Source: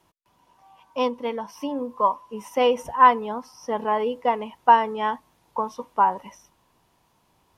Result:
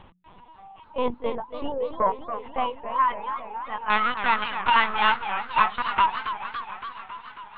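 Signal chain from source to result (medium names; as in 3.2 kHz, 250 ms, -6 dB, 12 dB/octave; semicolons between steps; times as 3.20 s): reverb removal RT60 0.87 s; bass shelf 110 Hz -9 dB; hum notches 50/100/150/200 Hz; upward compressor, threshold -36 dBFS; peak limiter -15.5 dBFS, peak gain reduction 11 dB; 3.91–6.06 s: waveshaping leveller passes 5; high-pass sweep 150 Hz -> 1.3 kHz, 0.68–3.06 s; Chebyshev shaper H 2 -16 dB, 3 -31 dB, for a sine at -6.5 dBFS; distance through air 78 m; LPC vocoder at 8 kHz pitch kept; modulated delay 277 ms, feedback 71%, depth 203 cents, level -10 dB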